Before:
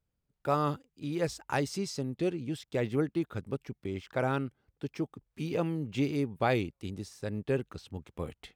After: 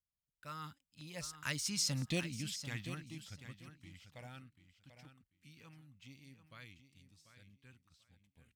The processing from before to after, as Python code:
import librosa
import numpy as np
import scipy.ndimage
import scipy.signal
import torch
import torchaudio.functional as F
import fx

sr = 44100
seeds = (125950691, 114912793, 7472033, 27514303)

y = fx.doppler_pass(x, sr, speed_mps=16, closest_m=3.3, pass_at_s=2.05)
y = fx.peak_eq(y, sr, hz=390.0, db=-12.0, octaves=0.45)
y = fx.filter_lfo_notch(y, sr, shape='saw_down', hz=0.99, low_hz=320.0, high_hz=1800.0, q=1.6)
y = fx.tone_stack(y, sr, knobs='5-5-5')
y = fx.echo_feedback(y, sr, ms=740, feedback_pct=19, wet_db=-11.0)
y = F.gain(torch.from_numpy(y), 17.0).numpy()